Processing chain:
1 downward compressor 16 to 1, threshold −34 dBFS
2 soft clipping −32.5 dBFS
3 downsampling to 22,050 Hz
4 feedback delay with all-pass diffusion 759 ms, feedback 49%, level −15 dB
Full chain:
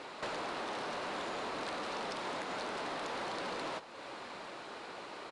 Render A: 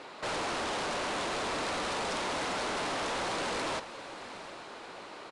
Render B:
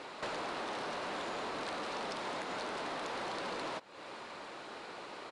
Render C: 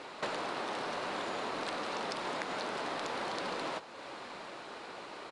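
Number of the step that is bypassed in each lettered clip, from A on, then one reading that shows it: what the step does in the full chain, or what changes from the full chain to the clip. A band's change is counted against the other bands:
1, average gain reduction 11.0 dB
4, echo-to-direct ratio −14.0 dB to none audible
2, distortion level −16 dB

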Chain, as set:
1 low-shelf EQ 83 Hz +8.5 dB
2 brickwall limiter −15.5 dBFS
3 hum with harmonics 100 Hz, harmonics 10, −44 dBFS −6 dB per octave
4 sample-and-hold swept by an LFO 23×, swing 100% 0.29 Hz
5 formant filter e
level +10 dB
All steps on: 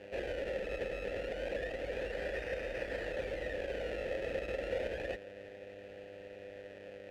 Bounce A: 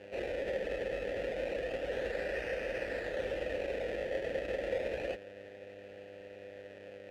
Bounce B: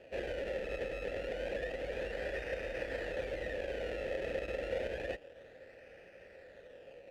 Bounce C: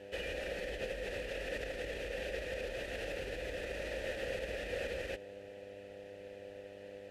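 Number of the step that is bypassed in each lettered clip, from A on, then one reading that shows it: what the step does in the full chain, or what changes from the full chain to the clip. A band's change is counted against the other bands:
1, 125 Hz band −3.0 dB
3, change in momentary loudness spread +5 LU
4, distortion level −13 dB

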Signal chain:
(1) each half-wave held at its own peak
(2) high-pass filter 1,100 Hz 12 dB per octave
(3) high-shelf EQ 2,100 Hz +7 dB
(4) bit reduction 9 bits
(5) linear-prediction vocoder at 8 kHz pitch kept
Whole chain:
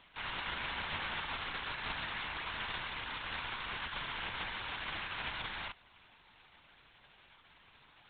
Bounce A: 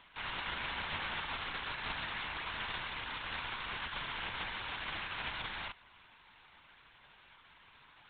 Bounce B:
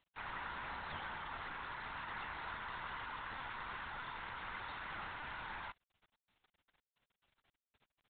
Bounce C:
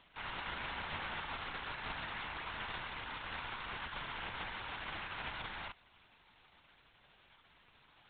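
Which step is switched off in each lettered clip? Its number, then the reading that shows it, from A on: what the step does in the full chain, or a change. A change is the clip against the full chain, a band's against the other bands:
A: 4, distortion level −25 dB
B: 1, distortion level −6 dB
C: 3, 4 kHz band −4.0 dB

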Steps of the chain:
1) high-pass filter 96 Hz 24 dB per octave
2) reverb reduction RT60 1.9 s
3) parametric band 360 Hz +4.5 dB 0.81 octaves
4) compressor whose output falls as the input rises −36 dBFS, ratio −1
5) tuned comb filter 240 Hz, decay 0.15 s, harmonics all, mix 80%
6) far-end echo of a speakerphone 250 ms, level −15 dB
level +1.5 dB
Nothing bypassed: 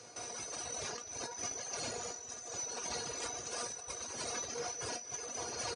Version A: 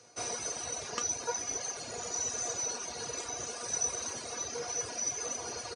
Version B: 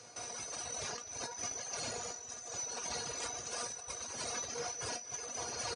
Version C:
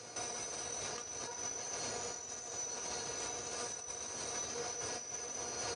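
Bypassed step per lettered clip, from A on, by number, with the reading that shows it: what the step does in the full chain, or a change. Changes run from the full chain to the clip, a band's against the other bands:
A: 4, change in crest factor +2.5 dB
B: 3, 250 Hz band −2.0 dB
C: 2, change in momentary loudness spread −1 LU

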